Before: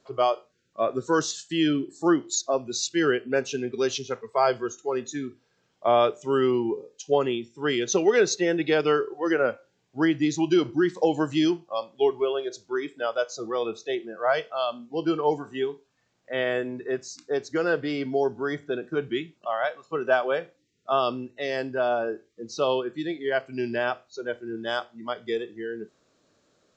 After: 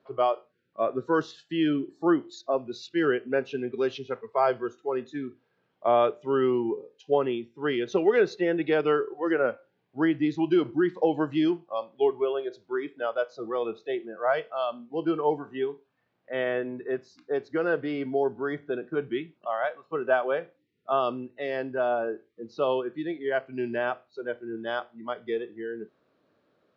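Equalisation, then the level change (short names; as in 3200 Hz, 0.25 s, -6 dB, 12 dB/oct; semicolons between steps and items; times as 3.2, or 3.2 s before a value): HPF 150 Hz 6 dB/oct; air absorption 350 m; 0.0 dB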